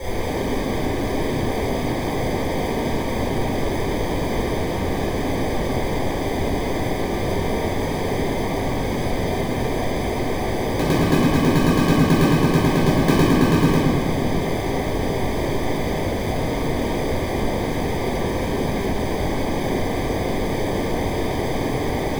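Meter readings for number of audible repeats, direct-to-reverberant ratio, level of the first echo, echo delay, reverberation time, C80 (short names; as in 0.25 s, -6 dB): none, -11.0 dB, none, none, 2.0 s, -0.5 dB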